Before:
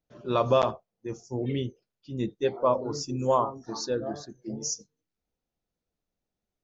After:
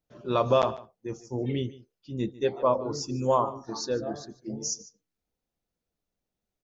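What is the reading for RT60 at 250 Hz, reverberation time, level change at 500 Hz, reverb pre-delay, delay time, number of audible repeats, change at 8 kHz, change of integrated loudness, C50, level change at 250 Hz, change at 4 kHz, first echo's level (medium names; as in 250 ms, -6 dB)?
no reverb, no reverb, 0.0 dB, no reverb, 148 ms, 1, no reading, 0.0 dB, no reverb, 0.0 dB, 0.0 dB, -19.0 dB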